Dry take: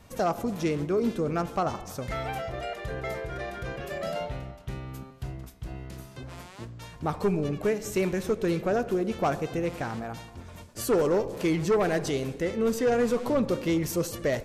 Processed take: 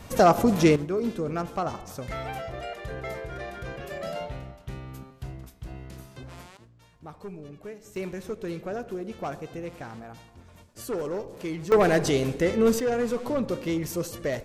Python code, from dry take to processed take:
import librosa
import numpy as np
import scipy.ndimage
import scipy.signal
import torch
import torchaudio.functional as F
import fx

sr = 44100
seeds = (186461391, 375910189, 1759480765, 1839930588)

y = fx.gain(x, sr, db=fx.steps((0.0, 9.0), (0.76, -1.5), (6.57, -14.0), (7.96, -7.0), (11.72, 5.0), (12.8, -2.0)))